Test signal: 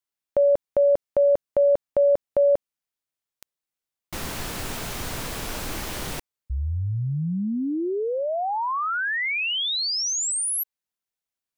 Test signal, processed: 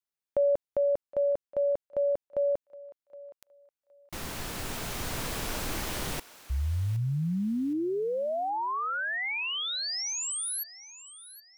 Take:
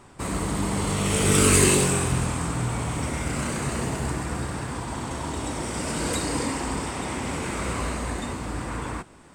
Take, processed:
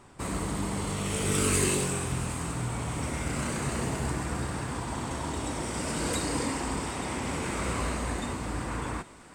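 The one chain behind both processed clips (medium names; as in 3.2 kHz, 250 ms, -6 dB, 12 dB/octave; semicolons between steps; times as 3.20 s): gain riding within 4 dB 2 s; on a send: thinning echo 767 ms, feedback 35%, high-pass 730 Hz, level -16 dB; on the sum: trim -6 dB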